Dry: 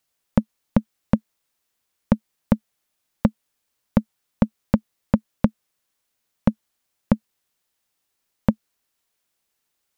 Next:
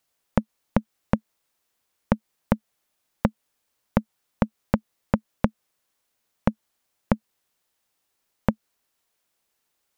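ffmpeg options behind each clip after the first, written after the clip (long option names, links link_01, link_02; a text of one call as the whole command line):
ffmpeg -i in.wav -af "equalizer=frequency=680:width_type=o:width=2.3:gain=3,acompressor=threshold=-16dB:ratio=6" out.wav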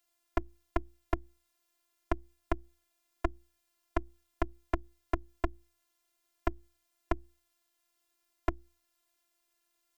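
ffmpeg -i in.wav -filter_complex "[0:a]bandreject=frequency=60:width_type=h:width=6,bandreject=frequency=120:width_type=h:width=6,bandreject=frequency=180:width_type=h:width=6,afftfilt=real='hypot(re,im)*cos(PI*b)':imag='0':win_size=512:overlap=0.75,acrossover=split=170[link_01][link_02];[link_02]acompressor=threshold=-31dB:ratio=4[link_03];[link_01][link_03]amix=inputs=2:normalize=0,volume=1dB" out.wav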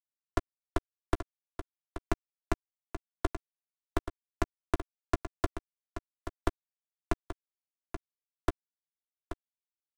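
ffmpeg -i in.wav -filter_complex "[0:a]acrusher=bits=3:mix=0:aa=0.5,asplit=2[link_01][link_02];[link_02]adelay=13,volume=-13dB[link_03];[link_01][link_03]amix=inputs=2:normalize=0,aecho=1:1:830:0.299" out.wav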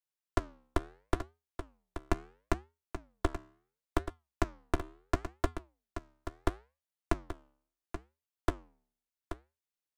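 ffmpeg -i in.wav -af "flanger=delay=6:depth=8.4:regen=-84:speed=0.73:shape=sinusoidal,volume=4.5dB" out.wav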